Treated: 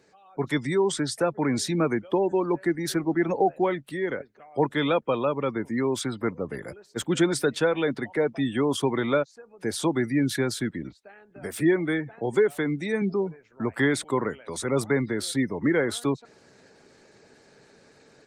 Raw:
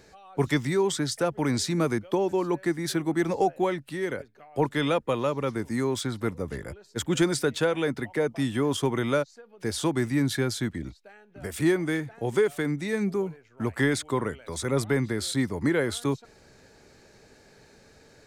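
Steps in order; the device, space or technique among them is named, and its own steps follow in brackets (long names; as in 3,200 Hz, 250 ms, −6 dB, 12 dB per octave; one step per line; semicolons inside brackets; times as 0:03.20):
0:11.57–0:13.02: high-pass filter 68 Hz 24 dB per octave
noise-suppressed video call (high-pass filter 150 Hz 12 dB per octave; gate on every frequency bin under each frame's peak −30 dB strong; automatic gain control gain up to 7 dB; level −5 dB; Opus 24 kbit/s 48,000 Hz)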